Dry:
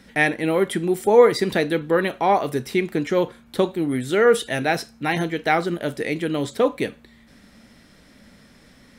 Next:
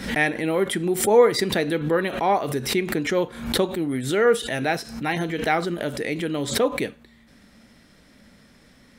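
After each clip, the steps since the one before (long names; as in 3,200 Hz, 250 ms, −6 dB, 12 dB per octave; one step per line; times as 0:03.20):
background raised ahead of every attack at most 84 dB per second
level −2.5 dB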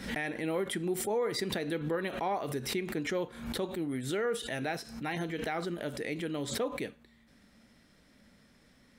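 brickwall limiter −14.5 dBFS, peak gain reduction 9.5 dB
level −9 dB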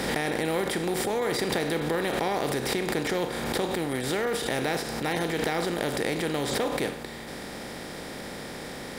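compressor on every frequency bin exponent 0.4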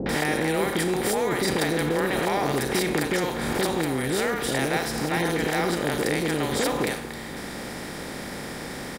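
three-band delay without the direct sound lows, mids, highs 60/90 ms, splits 560/3,600 Hz
level +4.5 dB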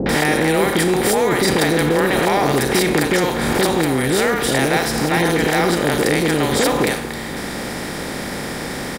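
soft clipping −12.5 dBFS, distortion −26 dB
level +8.5 dB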